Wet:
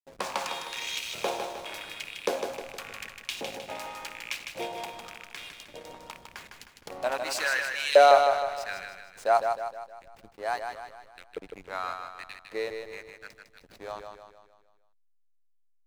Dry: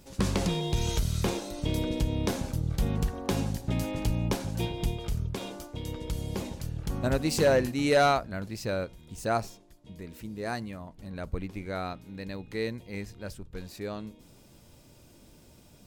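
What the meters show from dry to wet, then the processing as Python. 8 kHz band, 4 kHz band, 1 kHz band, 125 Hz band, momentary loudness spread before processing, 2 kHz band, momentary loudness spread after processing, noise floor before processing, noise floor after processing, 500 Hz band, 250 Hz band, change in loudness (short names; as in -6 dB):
-1.0 dB, +2.5 dB, +6.5 dB, under -25 dB, 16 LU, +4.5 dB, 19 LU, -56 dBFS, -64 dBFS, +2.5 dB, -16.0 dB, +2.0 dB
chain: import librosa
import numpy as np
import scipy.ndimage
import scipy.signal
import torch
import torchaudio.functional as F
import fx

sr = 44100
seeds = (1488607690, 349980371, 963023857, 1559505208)

y = fx.rattle_buzz(x, sr, strikes_db=-27.0, level_db=-30.0)
y = fx.filter_lfo_highpass(y, sr, shape='saw_up', hz=0.88, low_hz=490.0, high_hz=3300.0, q=2.5)
y = fx.backlash(y, sr, play_db=-36.5)
y = fx.echo_feedback(y, sr, ms=155, feedback_pct=48, wet_db=-6.0)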